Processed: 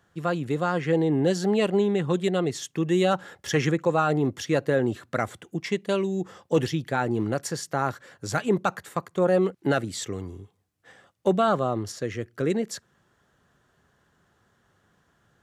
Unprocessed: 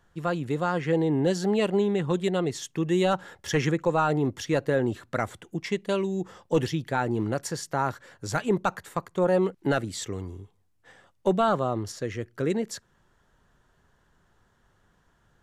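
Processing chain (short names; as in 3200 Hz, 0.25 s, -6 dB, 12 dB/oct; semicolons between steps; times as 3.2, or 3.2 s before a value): HPF 85 Hz; notch 930 Hz, Q 12; gain +1.5 dB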